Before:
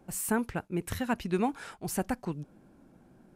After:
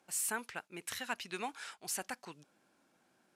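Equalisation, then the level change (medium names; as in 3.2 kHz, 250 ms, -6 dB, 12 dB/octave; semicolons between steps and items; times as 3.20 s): band-pass filter 4.8 kHz, Q 0.53; +2.5 dB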